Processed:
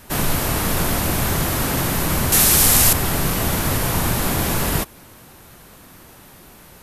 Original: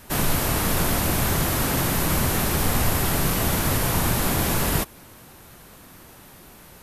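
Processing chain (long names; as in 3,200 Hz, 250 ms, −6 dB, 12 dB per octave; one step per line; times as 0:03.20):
0:02.32–0:02.93: parametric band 8,800 Hz +13.5 dB 2.7 octaves
level +2 dB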